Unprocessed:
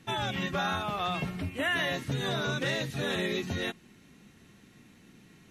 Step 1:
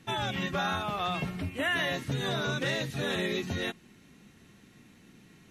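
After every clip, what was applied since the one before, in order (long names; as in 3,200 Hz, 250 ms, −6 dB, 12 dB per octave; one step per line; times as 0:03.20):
no processing that can be heard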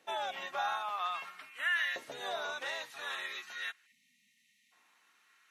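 auto-filter high-pass saw up 0.51 Hz 570–1,700 Hz
time-frequency box erased 0:03.86–0:04.72, 260–1,800 Hz
level −7.5 dB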